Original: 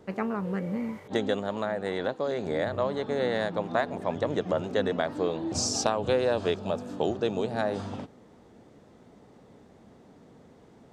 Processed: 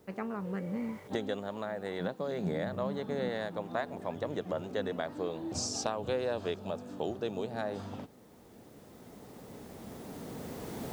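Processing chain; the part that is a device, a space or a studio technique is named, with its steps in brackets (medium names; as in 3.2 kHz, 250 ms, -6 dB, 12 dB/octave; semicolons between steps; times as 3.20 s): cheap recorder with automatic gain (white noise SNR 36 dB; recorder AGC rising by 6.8 dB/s); 2.00–3.29 s: peaking EQ 180 Hz +14.5 dB 0.4 oct; trim -7.5 dB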